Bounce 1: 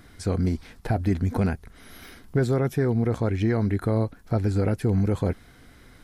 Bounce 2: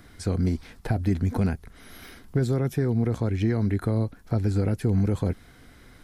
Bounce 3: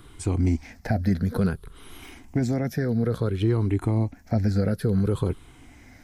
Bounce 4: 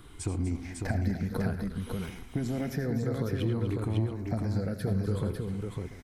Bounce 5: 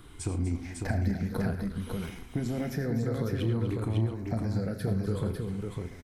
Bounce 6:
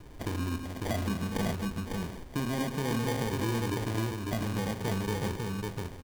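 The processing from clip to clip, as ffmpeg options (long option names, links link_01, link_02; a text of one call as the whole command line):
ffmpeg -i in.wav -filter_complex "[0:a]acrossover=split=330|3000[link_01][link_02][link_03];[link_02]acompressor=threshold=-31dB:ratio=6[link_04];[link_01][link_04][link_03]amix=inputs=3:normalize=0" out.wav
ffmpeg -i in.wav -af "afftfilt=real='re*pow(10,11/40*sin(2*PI*(0.65*log(max(b,1)*sr/1024/100)/log(2)-(-0.57)*(pts-256)/sr)))':imag='im*pow(10,11/40*sin(2*PI*(0.65*log(max(b,1)*sr/1024/100)/log(2)-(-0.57)*(pts-256)/sr)))':win_size=1024:overlap=0.75" out.wav
ffmpeg -i in.wav -filter_complex "[0:a]acompressor=threshold=-25dB:ratio=6,asplit=2[link_01][link_02];[link_02]aecho=0:1:80|107|245|550|685:0.237|0.178|0.266|0.631|0.141[link_03];[link_01][link_03]amix=inputs=2:normalize=0,volume=-2.5dB" out.wav
ffmpeg -i in.wav -filter_complex "[0:a]asplit=2[link_01][link_02];[link_02]adelay=35,volume=-12dB[link_03];[link_01][link_03]amix=inputs=2:normalize=0" out.wav
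ffmpeg -i in.wav -filter_complex "[0:a]acrossover=split=220|4500[link_01][link_02][link_03];[link_01]asoftclip=type=tanh:threshold=-34dB[link_04];[link_04][link_02][link_03]amix=inputs=3:normalize=0,acrusher=samples=33:mix=1:aa=0.000001,volume=1.5dB" out.wav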